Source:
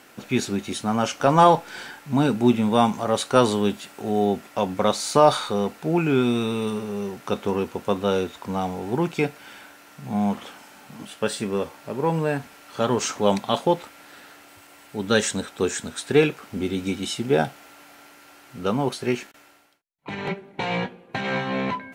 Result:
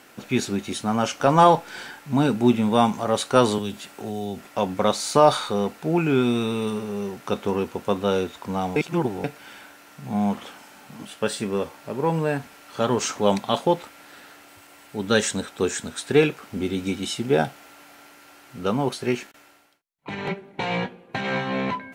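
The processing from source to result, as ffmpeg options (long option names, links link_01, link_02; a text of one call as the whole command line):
ffmpeg -i in.wav -filter_complex "[0:a]asettb=1/sr,asplit=3[link_01][link_02][link_03];[link_01]atrim=end=3.584[link_04];[link_02]atrim=start=3.58:end=4.45,asetpts=PTS-STARTPTS,afade=type=in:duration=0.004:curve=qsin,afade=type=out:start_time=0.866:duration=0.004:curve=qsin,acrossover=split=140|3000[link_05][link_06][link_07];[link_06]acompressor=threshold=-28dB:ratio=6:attack=3.2:release=140:knee=2.83:detection=peak[link_08];[link_05][link_08][link_07]amix=inputs=3:normalize=0[link_09];[link_03]atrim=start=4.446[link_10];[link_04][link_09]acrossfade=duration=0.004:curve1=hsin:curve2=qsin[link_11];[link_11][link_10]acrossfade=duration=0.004:curve1=qsin:curve2=hsin,asplit=3[link_12][link_13][link_14];[link_12]atrim=end=8.762[link_15];[link_13]atrim=start=8.758:end=9.242,asetpts=PTS-STARTPTS,areverse[link_16];[link_14]atrim=start=9.238[link_17];[link_15][link_16]acrossfade=duration=0.004:curve1=hsin:curve2=hsin[link_18];[link_18][link_17]acrossfade=duration=0.004:curve1=hsin:curve2=hsin" out.wav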